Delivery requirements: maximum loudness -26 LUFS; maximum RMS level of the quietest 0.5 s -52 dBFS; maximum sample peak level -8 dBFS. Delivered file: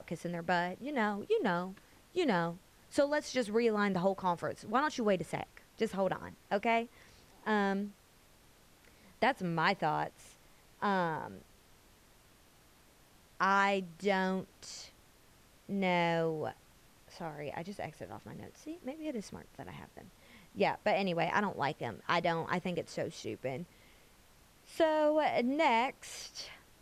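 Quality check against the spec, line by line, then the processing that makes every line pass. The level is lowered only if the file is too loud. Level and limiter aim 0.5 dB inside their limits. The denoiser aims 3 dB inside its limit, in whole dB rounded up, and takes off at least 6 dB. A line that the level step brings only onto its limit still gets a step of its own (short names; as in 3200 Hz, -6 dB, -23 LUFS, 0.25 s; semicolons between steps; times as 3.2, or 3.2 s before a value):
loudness -33.5 LUFS: OK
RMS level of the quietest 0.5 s -63 dBFS: OK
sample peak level -16.0 dBFS: OK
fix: none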